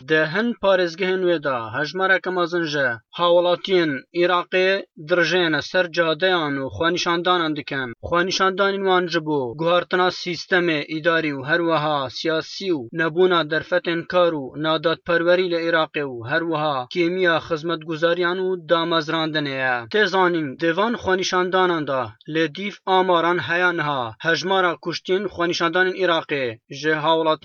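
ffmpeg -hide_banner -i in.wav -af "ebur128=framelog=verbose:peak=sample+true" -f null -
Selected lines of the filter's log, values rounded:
Integrated loudness:
  I:         -20.6 LUFS
  Threshold: -30.6 LUFS
Loudness range:
  LRA:         1.4 LU
  Threshold: -40.6 LUFS
  LRA low:   -21.2 LUFS
  LRA high:  -19.9 LUFS
Sample peak:
  Peak:       -5.6 dBFS
True peak:
  Peak:       -5.6 dBFS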